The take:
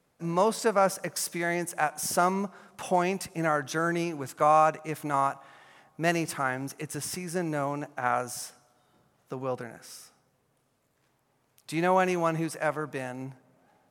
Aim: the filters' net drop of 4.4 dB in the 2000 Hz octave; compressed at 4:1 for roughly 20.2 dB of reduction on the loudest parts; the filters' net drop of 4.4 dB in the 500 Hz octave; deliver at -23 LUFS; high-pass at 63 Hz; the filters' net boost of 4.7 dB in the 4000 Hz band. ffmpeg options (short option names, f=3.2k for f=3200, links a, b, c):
-af "highpass=63,equalizer=f=500:t=o:g=-5.5,equalizer=f=2k:t=o:g=-7.5,equalizer=f=4k:t=o:g=8.5,acompressor=threshold=-45dB:ratio=4,volume=23.5dB"